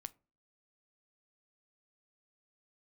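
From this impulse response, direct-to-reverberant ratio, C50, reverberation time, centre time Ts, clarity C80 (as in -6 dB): 14.5 dB, 24.5 dB, 0.35 s, 2 ms, 30.5 dB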